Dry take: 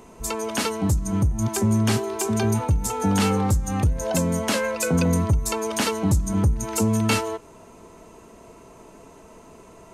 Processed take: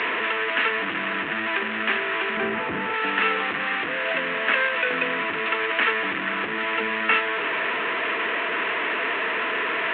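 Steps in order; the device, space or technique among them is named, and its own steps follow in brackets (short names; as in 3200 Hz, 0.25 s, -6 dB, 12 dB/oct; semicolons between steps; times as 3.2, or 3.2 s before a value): digital answering machine (BPF 390–3200 Hz; delta modulation 16 kbps, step -22 dBFS; speaker cabinet 360–4300 Hz, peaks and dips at 380 Hz -4 dB, 570 Hz -8 dB, 820 Hz -10 dB, 1800 Hz +8 dB, 2600 Hz +4 dB, 3900 Hz +3 dB); 2.37–2.94 tilt -3 dB/oct; gain +4 dB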